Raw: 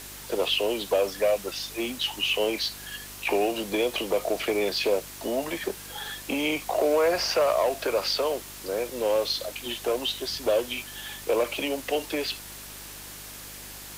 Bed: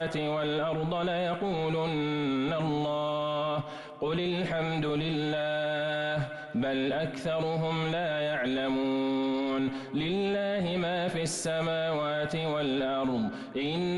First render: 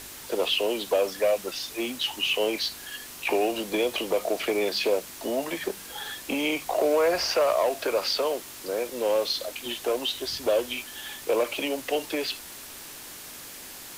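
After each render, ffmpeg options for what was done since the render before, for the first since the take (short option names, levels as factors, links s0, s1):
-af "bandreject=f=50:t=h:w=4,bandreject=f=100:t=h:w=4,bandreject=f=150:t=h:w=4,bandreject=f=200:t=h:w=4"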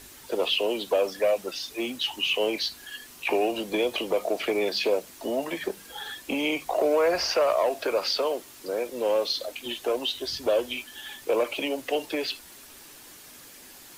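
-af "afftdn=nr=7:nf=-42"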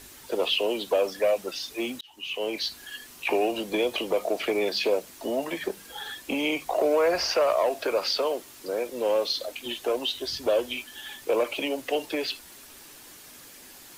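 -filter_complex "[0:a]asplit=2[s0][s1];[s0]atrim=end=2.01,asetpts=PTS-STARTPTS,afade=t=out:st=2.006:d=0.004:c=hsin[s2];[s1]atrim=start=2.01,asetpts=PTS-STARTPTS,afade=t=in:d=0.71[s3];[s2][s3]concat=n=2:v=0:a=1"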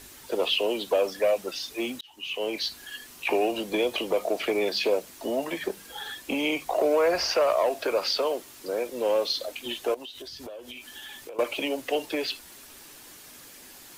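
-filter_complex "[0:a]asettb=1/sr,asplit=3[s0][s1][s2];[s0]atrim=end=9.944[s3];[s1]atrim=start=9.94:end=11.39,asetpts=PTS-STARTPTS,afade=t=in:d=0.004:c=qsin,afade=t=out:st=1.446:d=0.004:c=qsin,acompressor=threshold=0.0141:ratio=12:attack=3.2:release=140:knee=1:detection=peak[s4];[s2]atrim=start=11.386[s5];[s3][s4]acrossfade=d=0.004:c1=hsin:c2=qsin[s6];[s6][s5]acrossfade=d=0.004:c1=qsin:c2=hsin"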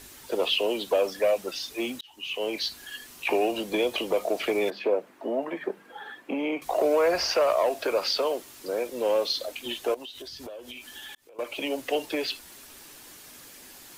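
-filter_complex "[0:a]asettb=1/sr,asplit=3[s0][s1][s2];[s0]atrim=end=4.704[s3];[s1]atrim=start=4.7:end=6.62,asetpts=PTS-STARTPTS,afade=t=in:d=0.004:c=qsin,afade=t=out:st=1.916:d=0.004:c=qsin,acrossover=split=160 2200:gain=0.0794 1 0.0891[s4][s5][s6];[s4][s5][s6]amix=inputs=3:normalize=0[s7];[s2]atrim=start=6.616[s8];[s3][s7]acrossfade=d=0.004:c1=hsin:c2=qsin[s9];[s9][s8]acrossfade=d=0.004:c1=qsin:c2=hsin,asplit=2[s10][s11];[s10]atrim=end=11.15,asetpts=PTS-STARTPTS,afade=t=out:st=11.146:d=0.004:c=hsin[s12];[s11]atrim=start=11.15,asetpts=PTS-STARTPTS,afade=t=in:d=0.6[s13];[s12][s13]concat=n=2:v=0:a=1"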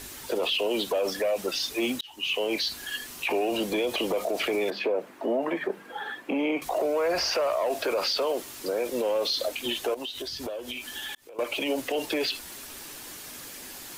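-af "acontrast=49,alimiter=limit=0.112:level=0:latency=1:release=42"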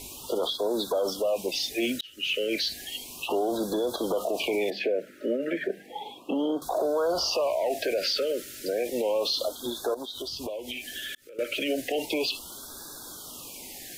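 -af "afftfilt=real='re*(1-between(b*sr/1024,870*pow(2400/870,0.5+0.5*sin(2*PI*0.33*pts/sr))/1.41,870*pow(2400/870,0.5+0.5*sin(2*PI*0.33*pts/sr))*1.41))':imag='im*(1-between(b*sr/1024,870*pow(2400/870,0.5+0.5*sin(2*PI*0.33*pts/sr))/1.41,870*pow(2400/870,0.5+0.5*sin(2*PI*0.33*pts/sr))*1.41))':win_size=1024:overlap=0.75"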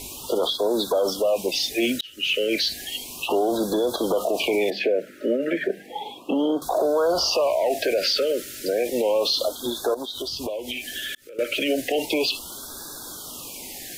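-af "volume=1.78"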